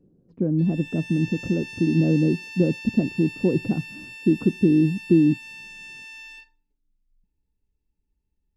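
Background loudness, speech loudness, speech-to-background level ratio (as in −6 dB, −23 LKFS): −37.5 LKFS, −22.5 LKFS, 15.0 dB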